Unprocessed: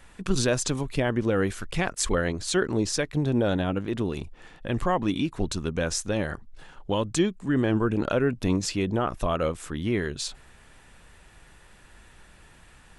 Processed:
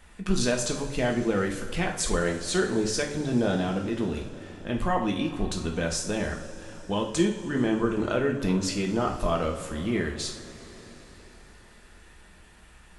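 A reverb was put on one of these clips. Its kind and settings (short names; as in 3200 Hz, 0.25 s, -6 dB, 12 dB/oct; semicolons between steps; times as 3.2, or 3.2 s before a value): two-slope reverb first 0.48 s, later 4.8 s, from -18 dB, DRR 0.5 dB; gain -3 dB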